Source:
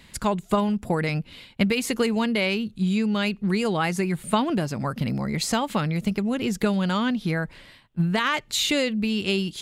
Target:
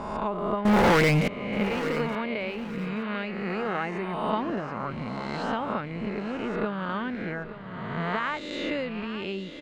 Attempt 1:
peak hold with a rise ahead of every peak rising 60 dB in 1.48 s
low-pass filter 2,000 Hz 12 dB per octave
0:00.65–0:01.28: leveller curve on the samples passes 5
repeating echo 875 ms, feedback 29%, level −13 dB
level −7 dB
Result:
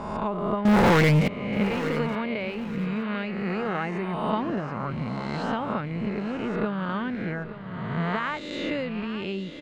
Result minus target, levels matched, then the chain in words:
125 Hz band +2.5 dB
peak hold with a rise ahead of every peak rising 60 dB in 1.48 s
low-pass filter 2,000 Hz 12 dB per octave
dynamic equaliser 130 Hz, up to −6 dB, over −38 dBFS, Q 0.97
0:00.65–0:01.28: leveller curve on the samples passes 5
repeating echo 875 ms, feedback 29%, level −13 dB
level −7 dB

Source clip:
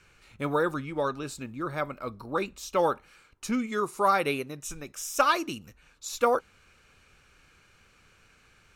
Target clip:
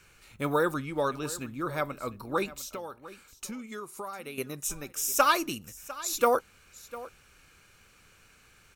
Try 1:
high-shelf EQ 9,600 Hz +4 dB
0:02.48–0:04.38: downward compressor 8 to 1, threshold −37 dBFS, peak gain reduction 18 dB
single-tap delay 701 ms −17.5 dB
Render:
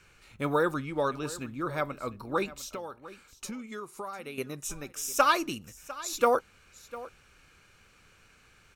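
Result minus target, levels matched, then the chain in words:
8,000 Hz band −3.0 dB
high-shelf EQ 9,600 Hz +15 dB
0:02.48–0:04.38: downward compressor 8 to 1, threshold −37 dBFS, peak gain reduction 18.5 dB
single-tap delay 701 ms −17.5 dB

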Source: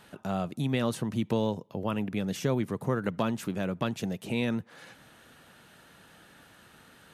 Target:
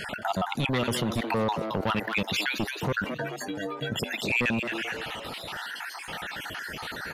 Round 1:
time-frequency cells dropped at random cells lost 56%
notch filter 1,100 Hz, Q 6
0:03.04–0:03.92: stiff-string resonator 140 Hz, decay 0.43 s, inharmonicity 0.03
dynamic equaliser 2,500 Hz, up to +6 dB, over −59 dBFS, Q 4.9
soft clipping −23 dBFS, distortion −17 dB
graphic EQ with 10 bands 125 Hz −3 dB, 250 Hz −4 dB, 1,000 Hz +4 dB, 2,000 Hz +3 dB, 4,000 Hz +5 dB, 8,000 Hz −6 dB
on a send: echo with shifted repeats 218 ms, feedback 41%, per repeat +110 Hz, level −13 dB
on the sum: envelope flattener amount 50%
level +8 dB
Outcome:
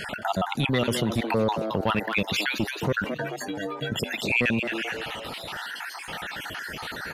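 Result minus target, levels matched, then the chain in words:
soft clipping: distortion −7 dB
time-frequency cells dropped at random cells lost 56%
notch filter 1,100 Hz, Q 6
0:03.04–0:03.92: stiff-string resonator 140 Hz, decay 0.43 s, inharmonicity 0.03
dynamic equaliser 2,500 Hz, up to +6 dB, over −59 dBFS, Q 4.9
soft clipping −29.5 dBFS, distortion −9 dB
graphic EQ with 10 bands 125 Hz −3 dB, 250 Hz −4 dB, 1,000 Hz +4 dB, 2,000 Hz +3 dB, 4,000 Hz +5 dB, 8,000 Hz −6 dB
on a send: echo with shifted repeats 218 ms, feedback 41%, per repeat +110 Hz, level −13 dB
on the sum: envelope flattener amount 50%
level +8 dB

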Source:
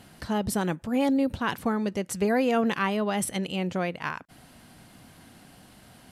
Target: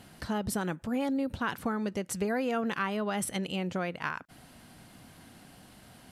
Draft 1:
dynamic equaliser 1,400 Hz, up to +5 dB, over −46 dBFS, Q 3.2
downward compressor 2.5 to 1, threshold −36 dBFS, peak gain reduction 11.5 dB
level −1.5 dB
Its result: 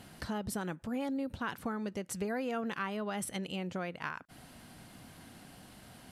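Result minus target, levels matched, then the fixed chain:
downward compressor: peak gain reduction +5 dB
dynamic equaliser 1,400 Hz, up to +5 dB, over −46 dBFS, Q 3.2
downward compressor 2.5 to 1, threshold −27.5 dBFS, peak gain reduction 6.5 dB
level −1.5 dB

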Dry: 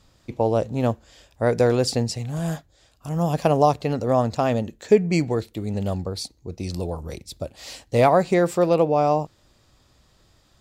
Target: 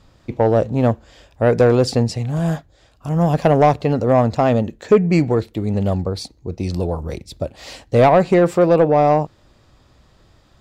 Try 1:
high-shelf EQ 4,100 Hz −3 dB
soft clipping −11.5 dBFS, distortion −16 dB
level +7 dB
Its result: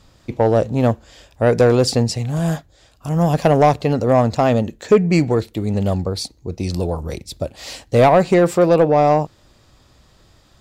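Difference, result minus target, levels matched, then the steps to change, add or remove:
8,000 Hz band +6.0 dB
change: high-shelf EQ 4,100 Hz −11 dB

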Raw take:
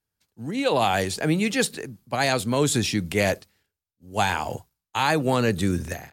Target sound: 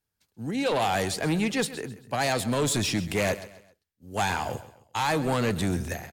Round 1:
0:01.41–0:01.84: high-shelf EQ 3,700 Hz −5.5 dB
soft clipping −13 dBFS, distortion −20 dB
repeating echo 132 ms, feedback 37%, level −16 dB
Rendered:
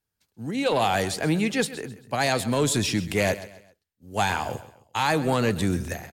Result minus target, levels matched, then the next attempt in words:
soft clipping: distortion −9 dB
0:01.41–0:01.84: high-shelf EQ 3,700 Hz −5.5 dB
soft clipping −20 dBFS, distortion −12 dB
repeating echo 132 ms, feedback 37%, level −16 dB

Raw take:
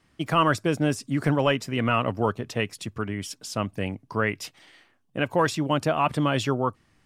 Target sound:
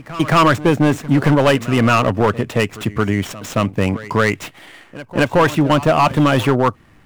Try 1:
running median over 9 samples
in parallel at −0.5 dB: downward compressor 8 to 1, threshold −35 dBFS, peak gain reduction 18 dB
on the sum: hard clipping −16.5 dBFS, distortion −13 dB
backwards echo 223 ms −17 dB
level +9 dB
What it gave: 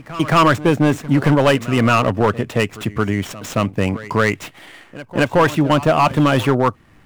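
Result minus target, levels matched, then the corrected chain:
downward compressor: peak gain reduction +5.5 dB
running median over 9 samples
in parallel at −0.5 dB: downward compressor 8 to 1, threshold −28.5 dBFS, peak gain reduction 12 dB
on the sum: hard clipping −16.5 dBFS, distortion −11 dB
backwards echo 223 ms −17 dB
level +9 dB

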